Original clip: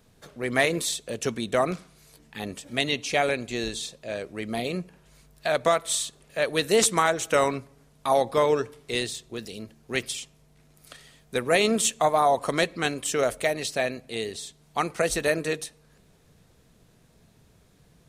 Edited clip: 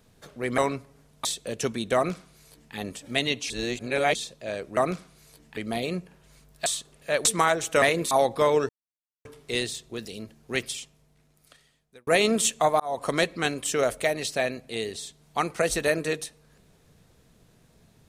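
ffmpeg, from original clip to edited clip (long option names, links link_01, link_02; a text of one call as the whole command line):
ffmpeg -i in.wav -filter_complex "[0:a]asplit=14[link_01][link_02][link_03][link_04][link_05][link_06][link_07][link_08][link_09][link_10][link_11][link_12][link_13][link_14];[link_01]atrim=end=0.582[link_15];[link_02]atrim=start=7.398:end=8.072[link_16];[link_03]atrim=start=0.868:end=3.122[link_17];[link_04]atrim=start=3.118:end=3.772,asetpts=PTS-STARTPTS,areverse[link_18];[link_05]atrim=start=3.768:end=4.392[link_19];[link_06]atrim=start=1.568:end=2.372[link_20];[link_07]atrim=start=4.388:end=5.482[link_21];[link_08]atrim=start=5.938:end=6.532[link_22];[link_09]atrim=start=6.828:end=7.402[link_23];[link_10]atrim=start=0.578:end=0.872[link_24];[link_11]atrim=start=8.068:end=8.65,asetpts=PTS-STARTPTS,afade=type=out:start_time=0.578:duration=0.004:curve=hsin,apad=pad_dur=0.56[link_25];[link_12]atrim=start=8.65:end=11.47,asetpts=PTS-STARTPTS,afade=type=in:duration=0.004:curve=hsin,afade=type=out:start_time=1.27:duration=1.55[link_26];[link_13]atrim=start=11.47:end=12.2,asetpts=PTS-STARTPTS,afade=type=in:duration=0.004:curve=hsin,afade=type=out:start_time=0.726:duration=0.004:curve=hsin[link_27];[link_14]atrim=start=12.2,asetpts=PTS-STARTPTS,afade=type=in:duration=0.29[link_28];[link_15][link_16]acrossfade=duration=0.004:curve1=hsin:curve2=hsin[link_29];[link_29][link_17]acrossfade=duration=0.004:curve1=hsin:curve2=hsin[link_30];[link_30][link_18]acrossfade=duration=0.004:curve1=hsin:curve2=hsin[link_31];[link_31][link_19]acrossfade=duration=0.004:curve1=hsin:curve2=hsin[link_32];[link_32][link_20]acrossfade=duration=0.004:curve1=hsin:curve2=hsin[link_33];[link_33][link_21]acrossfade=duration=0.004:curve1=hsin:curve2=hsin[link_34];[link_34][link_22]acrossfade=duration=0.004:curve1=hsin:curve2=hsin[link_35];[link_35][link_23]acrossfade=duration=0.004:curve1=hsin:curve2=hsin[link_36];[link_36][link_24]acrossfade=duration=0.004:curve1=hsin:curve2=hsin[link_37];[link_25][link_26][link_27][link_28]concat=n=4:v=0:a=1[link_38];[link_37][link_38]acrossfade=duration=0.004:curve1=hsin:curve2=hsin" out.wav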